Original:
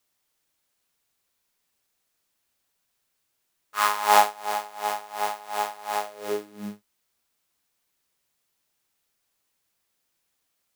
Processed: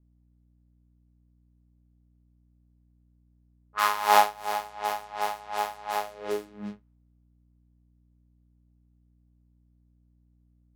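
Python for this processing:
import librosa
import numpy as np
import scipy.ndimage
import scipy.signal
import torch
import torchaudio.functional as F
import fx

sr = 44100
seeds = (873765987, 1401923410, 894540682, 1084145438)

y = fx.add_hum(x, sr, base_hz=60, snr_db=30)
y = fx.dynamic_eq(y, sr, hz=8200.0, q=1.6, threshold_db=-46.0, ratio=4.0, max_db=-5)
y = fx.env_lowpass(y, sr, base_hz=480.0, full_db=-26.5)
y = F.gain(torch.from_numpy(y), -1.5).numpy()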